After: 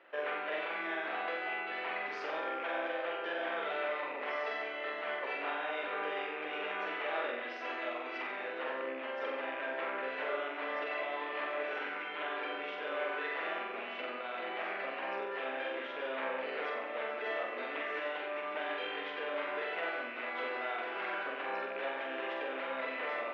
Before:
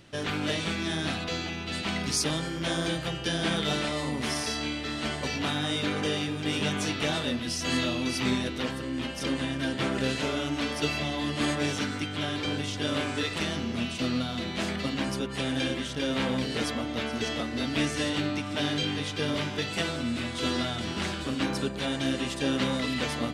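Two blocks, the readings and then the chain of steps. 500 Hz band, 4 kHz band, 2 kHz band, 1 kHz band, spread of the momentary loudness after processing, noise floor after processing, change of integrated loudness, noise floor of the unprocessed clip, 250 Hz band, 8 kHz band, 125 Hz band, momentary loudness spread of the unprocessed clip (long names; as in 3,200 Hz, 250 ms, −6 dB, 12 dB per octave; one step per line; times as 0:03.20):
−3.5 dB, −15.5 dB, −3.0 dB, −1.5 dB, 3 LU, −41 dBFS, −7.5 dB, −35 dBFS, −20.0 dB, below −35 dB, below −35 dB, 4 LU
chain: loose part that buzzes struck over −33 dBFS, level −28 dBFS
low-pass filter 2,200 Hz 24 dB per octave
brickwall limiter −26.5 dBFS, peak gain reduction 11 dB
high-pass filter 470 Hz 24 dB per octave
flutter between parallel walls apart 7.8 metres, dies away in 0.69 s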